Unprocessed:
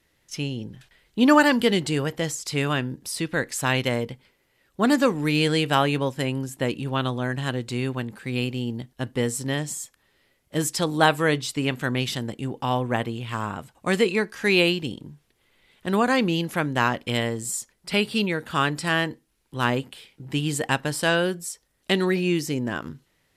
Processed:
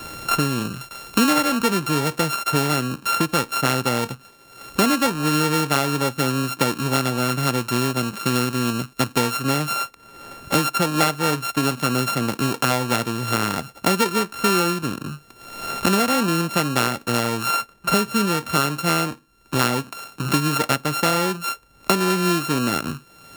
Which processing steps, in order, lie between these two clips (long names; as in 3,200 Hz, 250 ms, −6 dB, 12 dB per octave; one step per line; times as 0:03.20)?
samples sorted by size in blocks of 32 samples
low-shelf EQ 75 Hz −9 dB
multiband upward and downward compressor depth 100%
level +3 dB